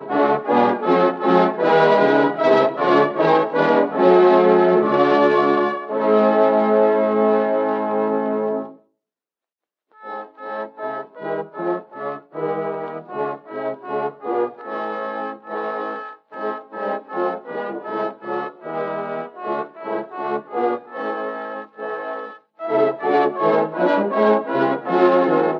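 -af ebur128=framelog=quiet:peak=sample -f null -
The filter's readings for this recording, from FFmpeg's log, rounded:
Integrated loudness:
  I:         -19.4 LUFS
  Threshold: -29.8 LUFS
Loudness range:
  LRA:        11.7 LU
  Threshold: -40.3 LUFS
  LRA low:   -27.2 LUFS
  LRA high:  -15.5 LUFS
Sample peak:
  Peak:       -2.2 dBFS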